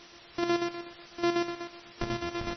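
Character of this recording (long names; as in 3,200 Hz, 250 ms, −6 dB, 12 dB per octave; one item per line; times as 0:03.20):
a buzz of ramps at a fixed pitch in blocks of 128 samples
chopped level 8.1 Hz, depth 60%, duty 55%
a quantiser's noise floor 8 bits, dither triangular
MP3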